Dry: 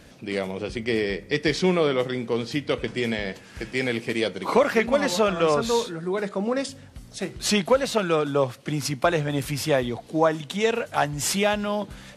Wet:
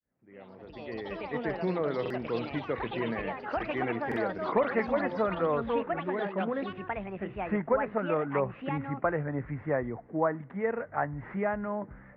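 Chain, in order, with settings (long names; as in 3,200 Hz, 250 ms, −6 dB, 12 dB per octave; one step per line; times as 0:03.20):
fade in at the beginning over 2.30 s
Chebyshev low-pass filter 2,000 Hz, order 5
delay with pitch and tempo change per echo 121 ms, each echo +5 semitones, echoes 3, each echo −6 dB
buffer that repeats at 0:02.01/0:04.07, samples 2,048, times 1
level −6.5 dB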